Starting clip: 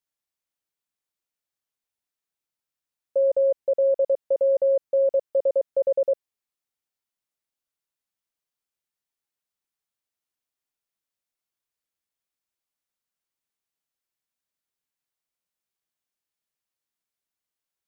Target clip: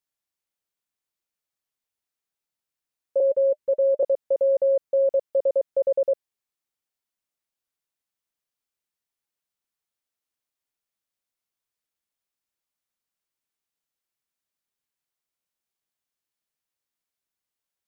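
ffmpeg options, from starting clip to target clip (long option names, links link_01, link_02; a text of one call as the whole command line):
ffmpeg -i in.wav -filter_complex "[0:a]asettb=1/sr,asplit=3[link_01][link_02][link_03];[link_01]atrim=end=3.204[link_04];[link_02]atrim=start=3.2:end=4.03,asetpts=PTS-STARTPTS,afade=type=in:duration=0.004:curve=qsin,afade=type=out:start_time=0.826:duration=0.004:curve=qsin,asuperstop=centerf=700:order=12:qfactor=3.1[link_05];[link_03]atrim=start=4.026[link_06];[link_04][link_05]acrossfade=duration=0.004:curve1=hsin:curve2=qsin[link_07];[link_07][link_06]acrossfade=duration=0.004:curve1=qsin:curve2=hsin" out.wav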